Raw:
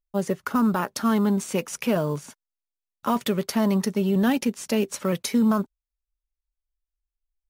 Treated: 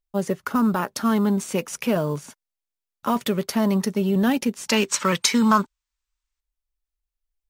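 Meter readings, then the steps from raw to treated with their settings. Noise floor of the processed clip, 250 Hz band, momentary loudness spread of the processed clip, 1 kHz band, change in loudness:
under -85 dBFS, +1.0 dB, 7 LU, +4.0 dB, +2.0 dB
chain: spectral gain 4.69–6.4, 860–8700 Hz +10 dB; gain +1 dB

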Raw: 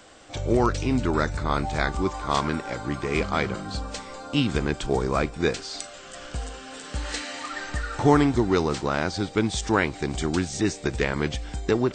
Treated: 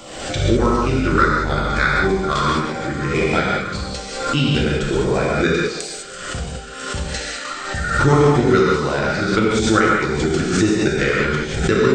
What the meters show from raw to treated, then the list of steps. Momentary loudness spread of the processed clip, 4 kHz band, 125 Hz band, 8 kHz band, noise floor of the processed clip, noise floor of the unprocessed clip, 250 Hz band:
11 LU, +7.5 dB, +7.5 dB, +6.5 dB, -31 dBFS, -42 dBFS, +6.0 dB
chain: bell 1400 Hz +10.5 dB 0.25 oct; transient shaper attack +5 dB, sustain -6 dB; thinning echo 0.148 s, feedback 49%, high-pass 190 Hz, level -12 dB; LFO notch saw down 1.6 Hz 660–1600 Hz; chopper 5.1 Hz, duty 90%; non-linear reverb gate 0.23 s flat, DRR -5 dB; backwards sustainer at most 52 dB/s

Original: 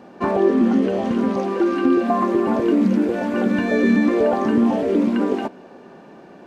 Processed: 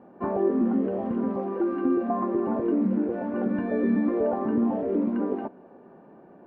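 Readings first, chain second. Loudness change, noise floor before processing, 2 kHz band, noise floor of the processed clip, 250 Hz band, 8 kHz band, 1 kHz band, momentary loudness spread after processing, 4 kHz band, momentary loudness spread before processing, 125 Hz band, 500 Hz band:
-7.0 dB, -44 dBFS, -14.5 dB, -51 dBFS, -7.0 dB, n/a, -8.5 dB, 5 LU, under -20 dB, 5 LU, -7.0 dB, -7.0 dB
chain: LPF 1200 Hz 12 dB/oct; gain -7 dB

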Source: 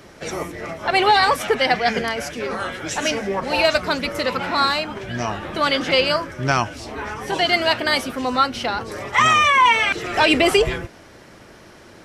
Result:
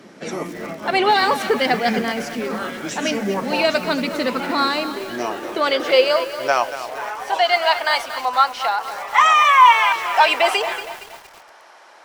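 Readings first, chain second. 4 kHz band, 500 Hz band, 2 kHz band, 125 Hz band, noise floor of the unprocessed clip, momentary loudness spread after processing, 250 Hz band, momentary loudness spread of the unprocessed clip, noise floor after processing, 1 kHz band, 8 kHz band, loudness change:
-1.5 dB, +1.0 dB, -0.5 dB, -7.5 dB, -45 dBFS, 15 LU, 0.0 dB, 13 LU, -46 dBFS, +3.0 dB, -2.0 dB, +1.0 dB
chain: high-pass sweep 210 Hz -> 820 Hz, 3.88–7.66; high shelf 12000 Hz -9 dB; lo-fi delay 0.233 s, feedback 55%, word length 5-bit, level -11 dB; gain -1.5 dB

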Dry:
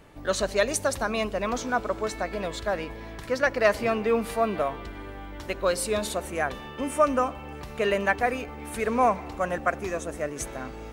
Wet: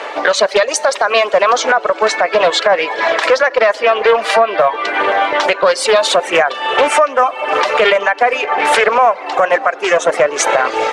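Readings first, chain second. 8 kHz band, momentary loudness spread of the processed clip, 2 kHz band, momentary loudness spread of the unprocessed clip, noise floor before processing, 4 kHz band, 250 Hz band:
+12.5 dB, 3 LU, +16.0 dB, 12 LU, -40 dBFS, +18.5 dB, +2.5 dB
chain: Schroeder reverb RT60 2.3 s, combs from 33 ms, DRR 14.5 dB; reverb removal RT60 0.72 s; HPF 500 Hz 24 dB/oct; air absorption 120 m; compressor 5:1, threshold -40 dBFS, peak gain reduction 20.5 dB; maximiser +34.5 dB; Doppler distortion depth 0.2 ms; gain -1 dB

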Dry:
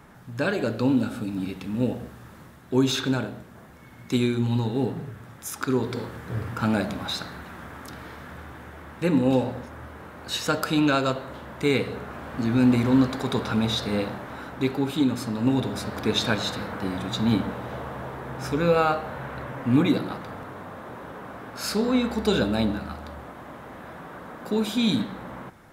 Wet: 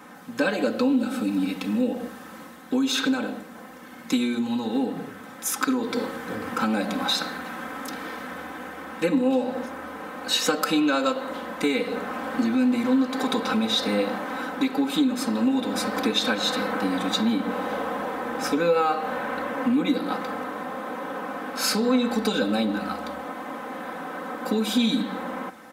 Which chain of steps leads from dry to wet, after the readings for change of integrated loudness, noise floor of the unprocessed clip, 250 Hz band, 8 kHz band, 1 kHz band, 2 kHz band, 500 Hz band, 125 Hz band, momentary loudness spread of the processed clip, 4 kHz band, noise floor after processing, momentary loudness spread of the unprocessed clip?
0.0 dB, -47 dBFS, +0.5 dB, +5.0 dB, +3.0 dB, +3.0 dB, +0.5 dB, -11.0 dB, 12 LU, +3.5 dB, -43 dBFS, 19 LU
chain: compressor 6:1, threshold -26 dBFS, peak gain reduction 11 dB; HPF 220 Hz 12 dB/oct; comb 3.9 ms, depth 84%; gain +5 dB

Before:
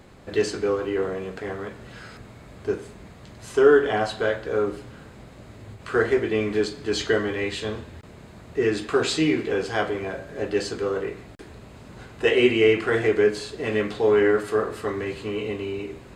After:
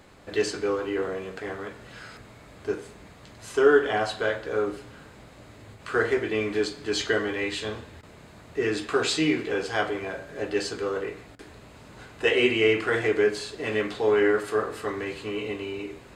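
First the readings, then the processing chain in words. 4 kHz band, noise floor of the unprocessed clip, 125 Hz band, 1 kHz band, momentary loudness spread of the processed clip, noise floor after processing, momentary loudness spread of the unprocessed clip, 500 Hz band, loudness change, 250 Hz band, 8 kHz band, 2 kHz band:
0.0 dB, -46 dBFS, -5.0 dB, -1.0 dB, 15 LU, -49 dBFS, 18 LU, -3.0 dB, -2.5 dB, -3.0 dB, 0.0 dB, 0.0 dB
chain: low shelf 480 Hz -6 dB; FDN reverb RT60 0.44 s, high-frequency decay 0.55×, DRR 14 dB

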